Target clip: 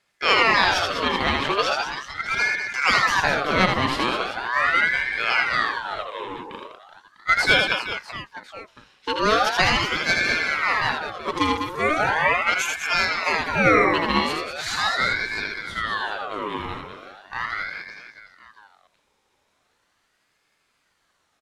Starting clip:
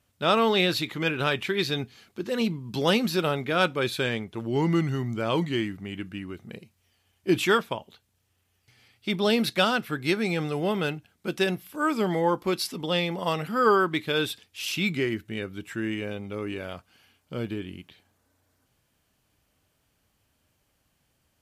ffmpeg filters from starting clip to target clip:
-filter_complex "[0:a]highpass=150,lowpass=7.2k,bandreject=f=3.8k:w=15,asplit=2[a][b];[b]aecho=0:1:80|200|380|650|1055:0.631|0.398|0.251|0.158|0.1[c];[a][c]amix=inputs=2:normalize=0,aeval=exprs='val(0)*sin(2*PI*1300*n/s+1300*0.5/0.39*sin(2*PI*0.39*n/s))':c=same,volume=5.5dB"

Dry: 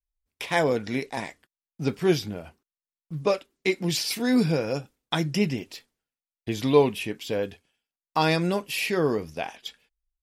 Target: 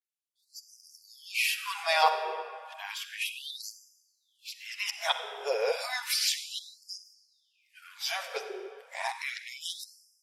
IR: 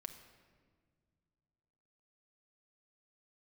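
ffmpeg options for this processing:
-filter_complex "[0:a]areverse[a];[1:a]atrim=start_sample=2205,asetrate=27342,aresample=44100[b];[a][b]afir=irnorm=-1:irlink=0,afftfilt=real='re*gte(b*sr/1024,380*pow(4800/380,0.5+0.5*sin(2*PI*0.32*pts/sr)))':imag='im*gte(b*sr/1024,380*pow(4800/380,0.5+0.5*sin(2*PI*0.32*pts/sr)))':win_size=1024:overlap=0.75,volume=2.5dB"

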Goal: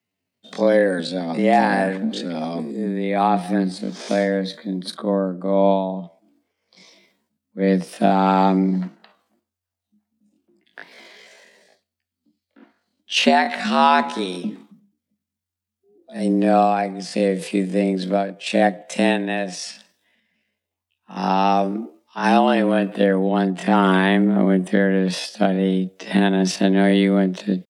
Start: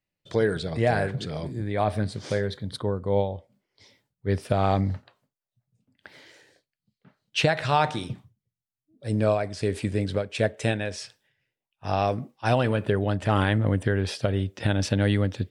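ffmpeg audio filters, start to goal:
-af "atempo=0.56,afreqshift=89,volume=6dB"

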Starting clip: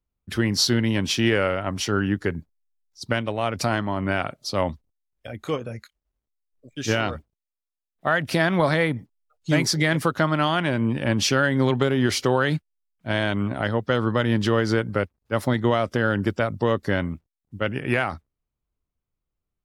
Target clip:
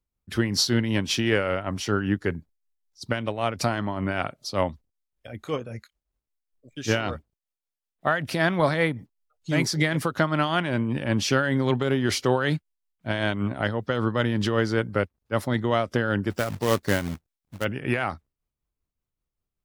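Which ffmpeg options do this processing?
-filter_complex "[0:a]asplit=3[a][b][c];[a]afade=t=out:st=16.3:d=0.02[d];[b]acrusher=bits=2:mode=log:mix=0:aa=0.000001,afade=t=in:st=16.3:d=0.02,afade=t=out:st=17.63:d=0.02[e];[c]afade=t=in:st=17.63:d=0.02[f];[d][e][f]amix=inputs=3:normalize=0,tremolo=f=5.2:d=0.48"

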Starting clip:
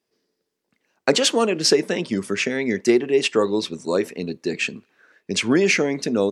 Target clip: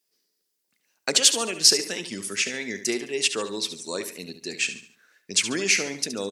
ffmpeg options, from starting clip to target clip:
-af "aecho=1:1:71|142|213|284:0.282|0.107|0.0407|0.0155,crystalizer=i=8:c=0,volume=-12.5dB"

